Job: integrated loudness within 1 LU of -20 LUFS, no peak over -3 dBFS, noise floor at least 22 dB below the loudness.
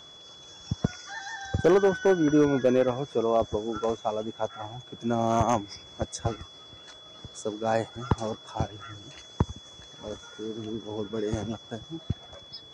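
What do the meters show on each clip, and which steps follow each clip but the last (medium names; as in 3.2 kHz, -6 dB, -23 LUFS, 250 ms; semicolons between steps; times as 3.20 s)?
clipped samples 0.2%; clipping level -13.5 dBFS; steady tone 3.4 kHz; tone level -47 dBFS; loudness -28.5 LUFS; peak level -13.5 dBFS; loudness target -20.0 LUFS
-> clip repair -13.5 dBFS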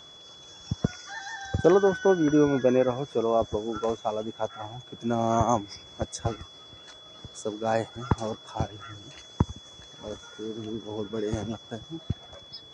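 clipped samples 0.0%; steady tone 3.4 kHz; tone level -47 dBFS
-> band-stop 3.4 kHz, Q 30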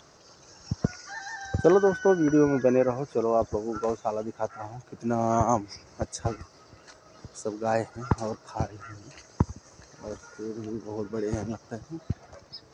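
steady tone not found; loudness -28.0 LUFS; peak level -6.0 dBFS; loudness target -20.0 LUFS
-> trim +8 dB; peak limiter -3 dBFS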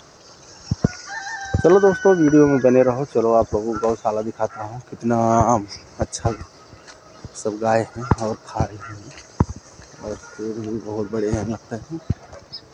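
loudness -20.5 LUFS; peak level -3.0 dBFS; noise floor -47 dBFS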